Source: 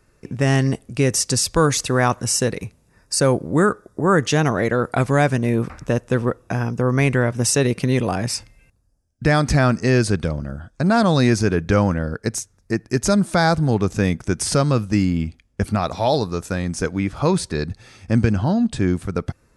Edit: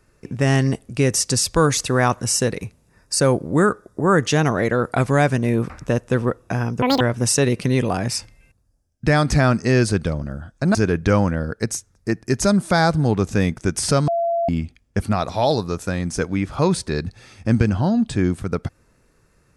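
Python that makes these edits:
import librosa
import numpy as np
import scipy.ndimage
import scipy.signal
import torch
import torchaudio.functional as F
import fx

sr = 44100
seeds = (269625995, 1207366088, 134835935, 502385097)

y = fx.edit(x, sr, fx.speed_span(start_s=6.82, length_s=0.37, speed=1.98),
    fx.cut(start_s=10.93, length_s=0.45),
    fx.bleep(start_s=14.71, length_s=0.41, hz=679.0, db=-17.5), tone=tone)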